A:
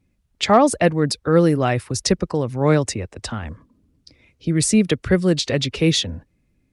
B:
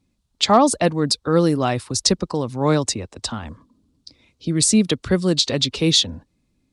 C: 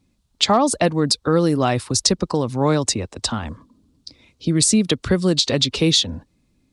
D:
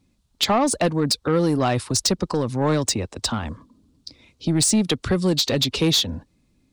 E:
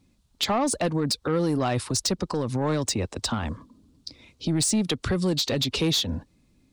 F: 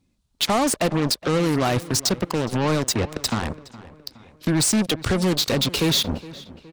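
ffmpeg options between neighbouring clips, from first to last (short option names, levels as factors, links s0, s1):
-af "equalizer=f=250:t=o:w=1:g=5,equalizer=f=1000:t=o:w=1:g=7,equalizer=f=2000:t=o:w=1:g=-4,equalizer=f=4000:t=o:w=1:g=10,equalizer=f=8000:t=o:w=1:g=7,volume=0.596"
-af "acompressor=threshold=0.126:ratio=3,volume=1.58"
-af "asoftclip=type=tanh:threshold=0.237"
-af "alimiter=limit=0.112:level=0:latency=1:release=105,volume=1.12"
-filter_complex "[0:a]aeval=exprs='0.126*(cos(1*acos(clip(val(0)/0.126,-1,1)))-cos(1*PI/2))+0.0251*(cos(7*acos(clip(val(0)/0.126,-1,1)))-cos(7*PI/2))':c=same,asplit=2[s0][s1];[s1]adelay=416,lowpass=f=3900:p=1,volume=0.126,asplit=2[s2][s3];[s3]adelay=416,lowpass=f=3900:p=1,volume=0.49,asplit=2[s4][s5];[s5]adelay=416,lowpass=f=3900:p=1,volume=0.49,asplit=2[s6][s7];[s7]adelay=416,lowpass=f=3900:p=1,volume=0.49[s8];[s0][s2][s4][s6][s8]amix=inputs=5:normalize=0,volume=1.5"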